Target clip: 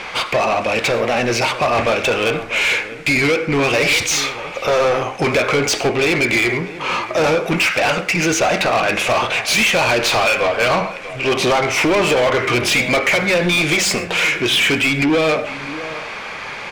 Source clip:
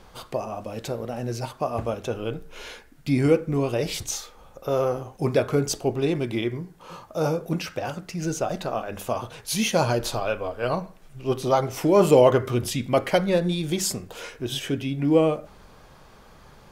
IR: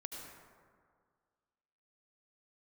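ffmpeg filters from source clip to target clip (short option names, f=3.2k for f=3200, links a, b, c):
-filter_complex "[0:a]lowpass=7.9k,equalizer=f=2.3k:w=2.4:g=14.5,alimiter=limit=-11dB:level=0:latency=1:release=355,acompressor=threshold=-21dB:ratio=6,asplit=2[a][b];[b]highpass=f=720:p=1,volume=25dB,asoftclip=type=tanh:threshold=-11.5dB[c];[a][c]amix=inputs=2:normalize=0,lowpass=f=5.7k:p=1,volume=-6dB,asplit=2[d][e];[e]adelay=641.4,volume=-14dB,highshelf=f=4k:g=-14.4[f];[d][f]amix=inputs=2:normalize=0,asplit=2[g][h];[1:a]atrim=start_sample=2205,atrim=end_sample=6174[i];[h][i]afir=irnorm=-1:irlink=0,volume=-6.5dB[j];[g][j]amix=inputs=2:normalize=0,volume=1.5dB"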